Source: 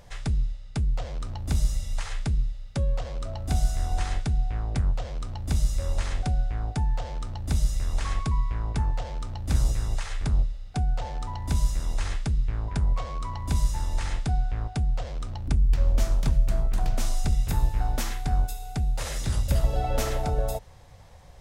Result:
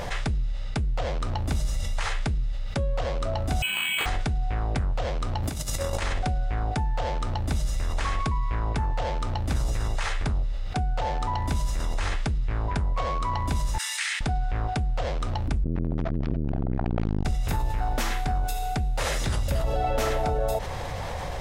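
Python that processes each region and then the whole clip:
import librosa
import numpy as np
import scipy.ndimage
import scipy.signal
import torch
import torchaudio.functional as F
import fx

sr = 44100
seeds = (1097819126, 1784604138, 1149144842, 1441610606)

y = fx.chain(x, sr, fx.freq_invert(carrier_hz=3000),
    fx.resample_bad(factor=8, down='filtered', up='hold'), at=(3.62, 4.06))
y = fx.chain(y, sr, fx.highpass(hz=96.0, slope=6),
    fx.high_shelf(hz=8600.0, db=10.0),
    fx.over_compress(threshold_db=-35.0, ratio=-0.5), at=(5.43, 6.02))
y = fx.chain(y, sr, fx.cheby1_highpass(hz=1900.0, order=3),
    fx.peak_eq(hz=8800.0, db=7.0, octaves=0.25), at=(13.78, 14.21))
y = fx.chain(y, sr, fx.bessel_lowpass(hz=2600.0, order=4),
    fx.clip_hard(threshold_db=-19.0),
    fx.transformer_sat(knee_hz=140.0), at=(15.64, 17.25))
y = fx.bass_treble(y, sr, bass_db=-6, treble_db=-7)
y = fx.env_flatten(y, sr, amount_pct=70)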